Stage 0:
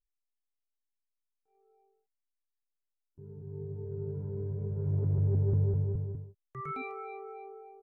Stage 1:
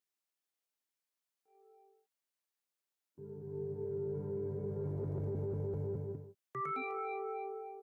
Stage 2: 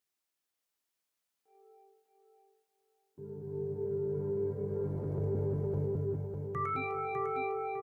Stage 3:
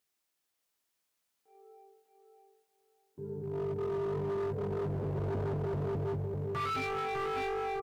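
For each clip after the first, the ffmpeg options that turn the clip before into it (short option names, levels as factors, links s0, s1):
-af "highpass=220,alimiter=level_in=3.98:limit=0.0631:level=0:latency=1:release=12,volume=0.251,volume=1.68"
-af "aecho=1:1:602|1204|1806|2408:0.562|0.152|0.041|0.0111,volume=1.5"
-af "asoftclip=type=hard:threshold=0.0168,volume=1.58"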